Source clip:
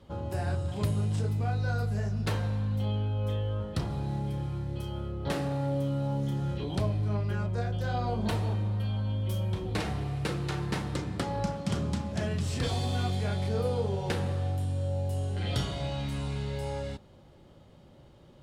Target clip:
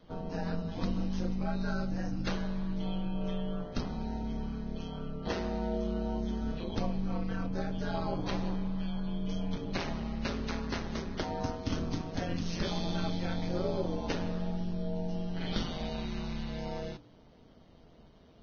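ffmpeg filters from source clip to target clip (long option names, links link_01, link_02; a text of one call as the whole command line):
ffmpeg -i in.wav -af "bandreject=frequency=208.5:width_type=h:width=4,bandreject=frequency=417:width_type=h:width=4,aeval=exprs='val(0)*sin(2*PI*85*n/s)':channel_layout=same" -ar 16000 -c:a libvorbis -b:a 16k out.ogg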